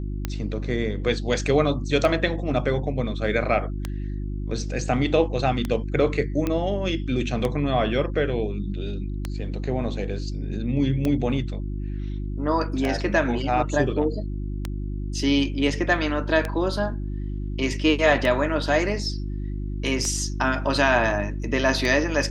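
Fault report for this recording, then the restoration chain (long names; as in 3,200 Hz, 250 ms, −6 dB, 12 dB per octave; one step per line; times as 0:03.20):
mains hum 50 Hz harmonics 7 −29 dBFS
scratch tick 33 1/3 rpm −12 dBFS
0:06.47: click −12 dBFS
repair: click removal
hum removal 50 Hz, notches 7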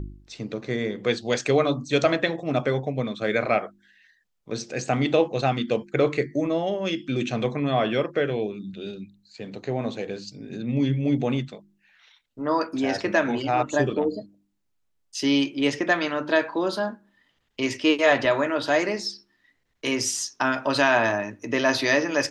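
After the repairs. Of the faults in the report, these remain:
none of them is left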